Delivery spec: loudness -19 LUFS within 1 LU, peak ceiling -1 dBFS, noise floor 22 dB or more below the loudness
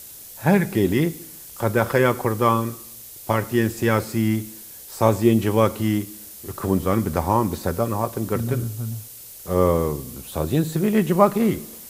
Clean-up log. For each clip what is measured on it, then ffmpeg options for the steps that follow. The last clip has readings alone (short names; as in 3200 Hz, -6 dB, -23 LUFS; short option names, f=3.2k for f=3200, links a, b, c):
noise floor -41 dBFS; noise floor target -44 dBFS; loudness -22.0 LUFS; peak -1.5 dBFS; loudness target -19.0 LUFS
-> -af "afftdn=nr=6:nf=-41"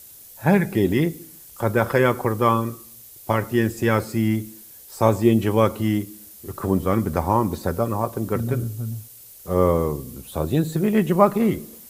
noise floor -45 dBFS; loudness -22.0 LUFS; peak -1.5 dBFS; loudness target -19.0 LUFS
-> -af "volume=3dB,alimiter=limit=-1dB:level=0:latency=1"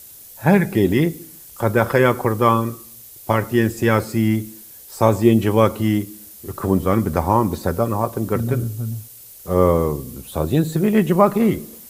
loudness -19.0 LUFS; peak -1.0 dBFS; noise floor -42 dBFS